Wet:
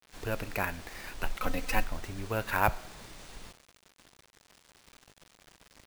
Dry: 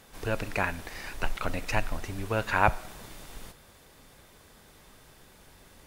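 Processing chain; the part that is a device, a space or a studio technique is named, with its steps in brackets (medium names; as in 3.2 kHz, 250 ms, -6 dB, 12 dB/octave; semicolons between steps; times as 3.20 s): early 8-bit sampler (sample-rate reducer 14 kHz, jitter 0%; bit crusher 8-bit); 1.41–1.84 s: comb 3.9 ms, depth 88%; trim -3.5 dB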